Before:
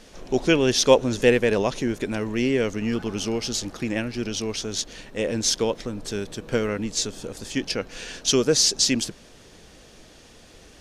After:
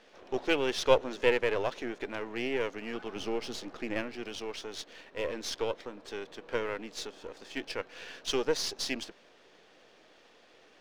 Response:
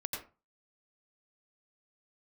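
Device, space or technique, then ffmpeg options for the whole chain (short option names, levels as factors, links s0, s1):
crystal radio: -filter_complex "[0:a]highpass=390,lowpass=3300,aeval=exprs='if(lt(val(0),0),0.447*val(0),val(0))':c=same,asettb=1/sr,asplit=3[s0][s1][s2];[s0]atrim=end=3.164[s3];[s1]atrim=start=3.16:end=4.16,asetpts=PTS-STARTPTS,afade=t=in:d=0.004:c=qsin,afade=t=out:st=0.996:d=0.004:c=qsin,lowshelf=f=440:g=6[s4];[s2]atrim=start=4.156[s5];[s3][s4]acrossfade=d=0.004:c1=hsin:c2=qsin[s6];[s6][s5]acrossfade=d=0.004:c1=qsin:c2=hsin,volume=0.668"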